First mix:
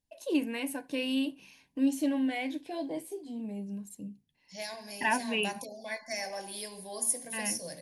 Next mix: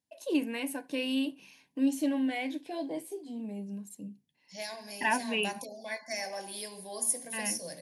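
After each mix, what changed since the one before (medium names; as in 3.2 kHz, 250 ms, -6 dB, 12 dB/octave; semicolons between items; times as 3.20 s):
master: add high-pass 140 Hz 12 dB/octave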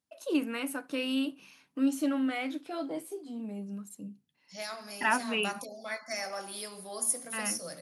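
master: remove Butterworth band-stop 1.3 kHz, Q 2.6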